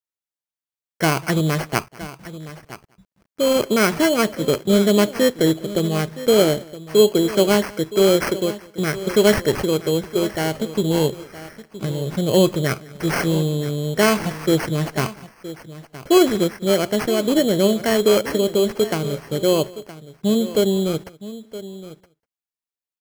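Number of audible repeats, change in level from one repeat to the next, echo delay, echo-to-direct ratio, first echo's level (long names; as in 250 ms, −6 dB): 2, repeats not evenly spaced, 196 ms, −15.0 dB, −23.5 dB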